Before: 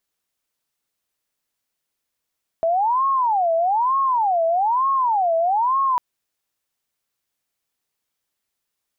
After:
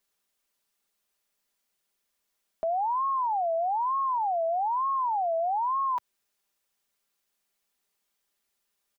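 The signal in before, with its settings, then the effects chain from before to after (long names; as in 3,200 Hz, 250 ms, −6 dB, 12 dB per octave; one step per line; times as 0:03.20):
siren wail 656–1,090 Hz 1.1 per second sine −16 dBFS 3.35 s
parametric band 110 Hz −13.5 dB 0.64 octaves
comb filter 5 ms, depth 46%
brickwall limiter −24 dBFS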